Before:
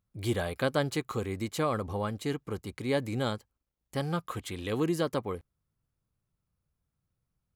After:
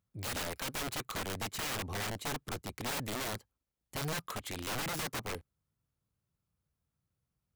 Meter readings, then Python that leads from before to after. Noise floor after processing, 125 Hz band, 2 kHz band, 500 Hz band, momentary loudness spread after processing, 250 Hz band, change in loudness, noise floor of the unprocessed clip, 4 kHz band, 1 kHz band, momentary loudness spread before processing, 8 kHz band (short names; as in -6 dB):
under -85 dBFS, -8.0 dB, -0.5 dB, -11.0 dB, 5 LU, -10.5 dB, -5.0 dB, -85 dBFS, +1.5 dB, -4.0 dB, 9 LU, +6.0 dB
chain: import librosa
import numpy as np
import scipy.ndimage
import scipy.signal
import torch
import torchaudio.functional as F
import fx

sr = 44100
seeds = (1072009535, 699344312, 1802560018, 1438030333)

y = scipy.signal.sosfilt(scipy.signal.butter(2, 52.0, 'highpass', fs=sr, output='sos'), x)
y = (np.mod(10.0 ** (29.5 / 20.0) * y + 1.0, 2.0) - 1.0) / 10.0 ** (29.5 / 20.0)
y = y * 10.0 ** (-2.0 / 20.0)